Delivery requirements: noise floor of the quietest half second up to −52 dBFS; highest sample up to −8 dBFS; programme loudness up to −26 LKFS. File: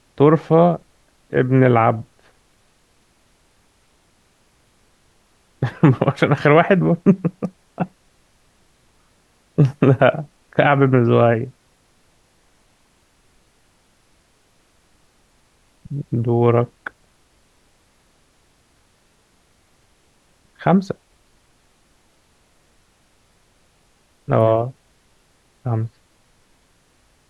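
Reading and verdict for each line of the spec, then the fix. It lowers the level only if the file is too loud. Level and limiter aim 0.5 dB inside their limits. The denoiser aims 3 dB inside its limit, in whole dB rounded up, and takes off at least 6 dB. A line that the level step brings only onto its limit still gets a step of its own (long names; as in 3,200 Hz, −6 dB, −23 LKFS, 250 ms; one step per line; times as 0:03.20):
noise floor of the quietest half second −59 dBFS: in spec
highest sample −1.5 dBFS: out of spec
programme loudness −17.5 LKFS: out of spec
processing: level −9 dB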